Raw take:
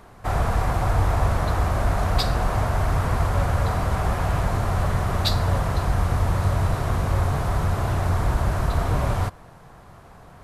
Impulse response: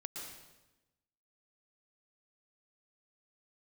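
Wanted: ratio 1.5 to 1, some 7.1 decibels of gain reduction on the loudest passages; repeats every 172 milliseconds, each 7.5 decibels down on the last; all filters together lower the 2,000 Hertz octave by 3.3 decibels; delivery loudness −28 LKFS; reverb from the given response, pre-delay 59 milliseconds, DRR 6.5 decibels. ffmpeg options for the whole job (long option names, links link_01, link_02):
-filter_complex "[0:a]equalizer=frequency=2000:width_type=o:gain=-4.5,acompressor=threshold=-36dB:ratio=1.5,aecho=1:1:172|344|516|688|860:0.422|0.177|0.0744|0.0312|0.0131,asplit=2[link_01][link_02];[1:a]atrim=start_sample=2205,adelay=59[link_03];[link_02][link_03]afir=irnorm=-1:irlink=0,volume=-5dB[link_04];[link_01][link_04]amix=inputs=2:normalize=0,volume=1dB"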